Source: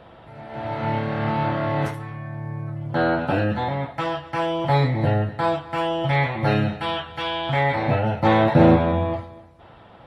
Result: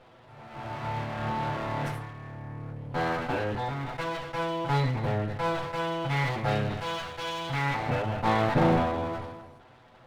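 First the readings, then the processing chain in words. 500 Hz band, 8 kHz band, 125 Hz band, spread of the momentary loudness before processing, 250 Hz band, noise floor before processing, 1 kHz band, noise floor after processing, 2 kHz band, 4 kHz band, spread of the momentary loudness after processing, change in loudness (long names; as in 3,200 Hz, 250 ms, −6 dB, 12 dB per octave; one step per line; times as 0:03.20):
−8.0 dB, can't be measured, −7.5 dB, 14 LU, −9.0 dB, −47 dBFS, −6.0 dB, −55 dBFS, −5.5 dB, −5.5 dB, 14 LU, −7.5 dB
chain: lower of the sound and its delayed copy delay 8 ms
mains-hum notches 50/100/150/200/250 Hz
level that may fall only so fast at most 45 dB per second
level −6.5 dB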